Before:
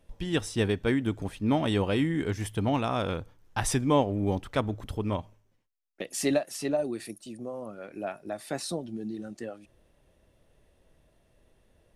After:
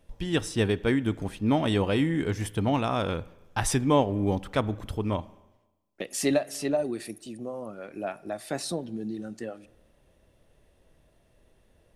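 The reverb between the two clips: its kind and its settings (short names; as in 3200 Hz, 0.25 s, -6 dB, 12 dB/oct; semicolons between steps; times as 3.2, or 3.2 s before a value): spring tank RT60 1.1 s, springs 36/46 ms, chirp 55 ms, DRR 19.5 dB; gain +1.5 dB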